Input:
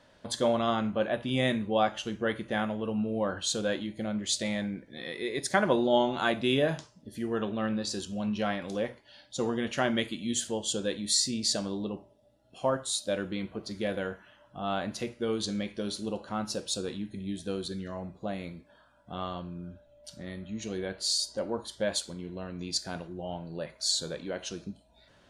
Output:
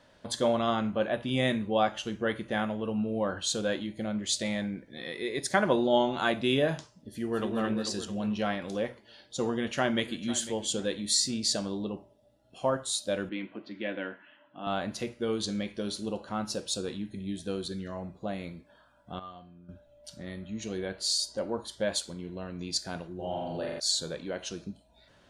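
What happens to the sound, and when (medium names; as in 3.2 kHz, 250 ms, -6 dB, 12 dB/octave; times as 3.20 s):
7.10–7.52 s: echo throw 220 ms, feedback 60%, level -4.5 dB
9.46–10.30 s: echo throw 500 ms, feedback 30%, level -15.5 dB
13.29–14.67 s: cabinet simulation 280–3200 Hz, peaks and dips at 280 Hz +8 dB, 440 Hz -9 dB, 740 Hz -5 dB, 1.2 kHz -4 dB, 1.9 kHz +3 dB, 2.7 kHz +4 dB
19.19–19.69 s: feedback comb 240 Hz, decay 0.37 s, harmonics odd, mix 80%
23.15–23.80 s: flutter echo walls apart 7.4 m, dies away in 1.4 s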